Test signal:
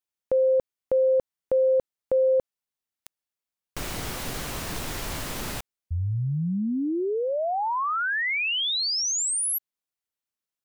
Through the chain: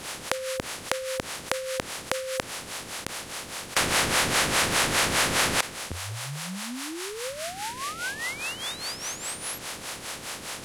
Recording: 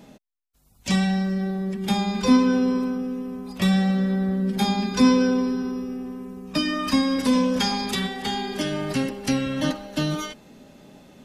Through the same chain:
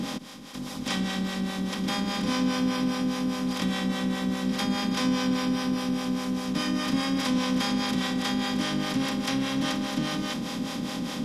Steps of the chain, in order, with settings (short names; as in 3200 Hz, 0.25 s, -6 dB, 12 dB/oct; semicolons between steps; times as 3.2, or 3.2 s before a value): per-bin compression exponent 0.2; dynamic EQ 1800 Hz, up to +3 dB, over -24 dBFS, Q 0.91; harmonic tremolo 4.9 Hz, depth 70%, crossover 450 Hz; gain -10 dB